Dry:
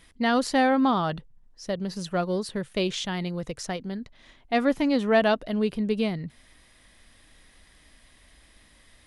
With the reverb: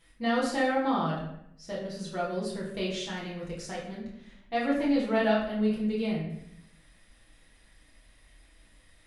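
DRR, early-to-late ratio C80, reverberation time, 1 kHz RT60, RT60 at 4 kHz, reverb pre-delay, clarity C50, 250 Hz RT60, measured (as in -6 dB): -6.5 dB, 6.5 dB, 0.75 s, 0.70 s, 0.55 s, 6 ms, 3.5 dB, 1.0 s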